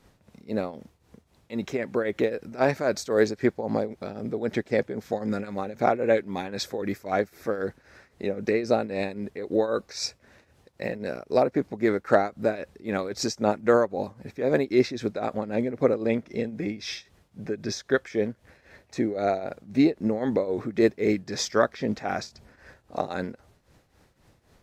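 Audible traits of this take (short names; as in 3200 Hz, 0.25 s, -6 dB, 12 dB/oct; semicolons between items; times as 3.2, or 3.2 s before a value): tremolo triangle 3.8 Hz, depth 80%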